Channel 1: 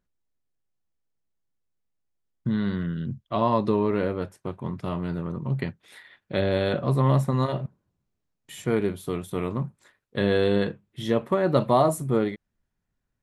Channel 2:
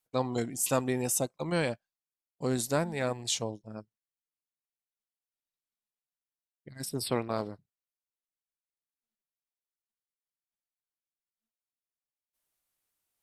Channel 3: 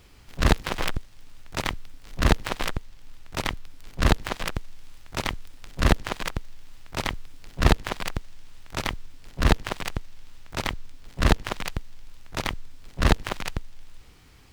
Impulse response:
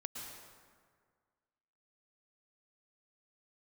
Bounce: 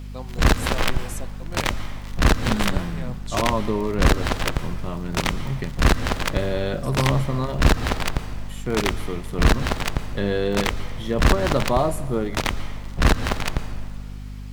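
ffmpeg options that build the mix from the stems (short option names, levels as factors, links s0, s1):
-filter_complex "[0:a]volume=0.75,asplit=2[s0][s1];[s1]volume=0.237[s2];[1:a]volume=0.398[s3];[2:a]volume=1.41,asplit=2[s4][s5];[s5]volume=0.501[s6];[3:a]atrim=start_sample=2205[s7];[s2][s6]amix=inputs=2:normalize=0[s8];[s8][s7]afir=irnorm=-1:irlink=0[s9];[s0][s3][s4][s9]amix=inputs=4:normalize=0,aeval=exprs='val(0)+0.0224*(sin(2*PI*50*n/s)+sin(2*PI*2*50*n/s)/2+sin(2*PI*3*50*n/s)/3+sin(2*PI*4*50*n/s)/4+sin(2*PI*5*50*n/s)/5)':c=same,asoftclip=type=hard:threshold=0.376"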